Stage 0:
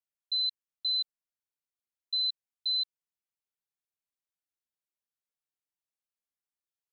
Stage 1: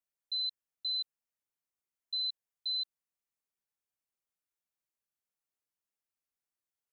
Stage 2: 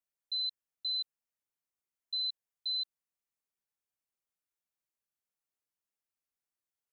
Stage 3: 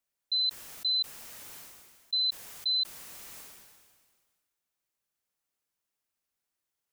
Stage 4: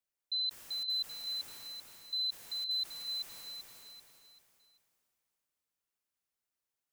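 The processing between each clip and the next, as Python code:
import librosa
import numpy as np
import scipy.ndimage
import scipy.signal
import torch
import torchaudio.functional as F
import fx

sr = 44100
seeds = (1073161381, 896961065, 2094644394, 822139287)

y1 = fx.peak_eq(x, sr, hz=3800.0, db=-5.0, octaves=0.77)
y2 = y1
y3 = fx.sustainer(y2, sr, db_per_s=34.0)
y3 = y3 * 10.0 ** (6.0 / 20.0)
y4 = fx.echo_feedback(y3, sr, ms=388, feedback_pct=39, wet_db=-4.0)
y4 = y4 * 10.0 ** (-6.0 / 20.0)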